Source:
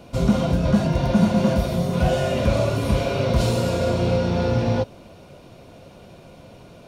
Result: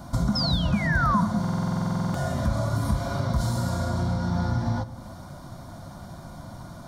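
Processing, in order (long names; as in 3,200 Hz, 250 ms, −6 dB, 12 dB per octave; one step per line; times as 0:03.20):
downward compressor 3 to 1, threshold −30 dBFS, peak gain reduction 13.5 dB
sound drawn into the spectrogram fall, 0:00.35–0:01.21, 950–5,400 Hz −31 dBFS
phaser with its sweep stopped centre 1,100 Hz, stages 4
convolution reverb RT60 1.0 s, pre-delay 78 ms, DRR 16 dB
buffer that repeats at 0:01.40, samples 2,048, times 15
level +7.5 dB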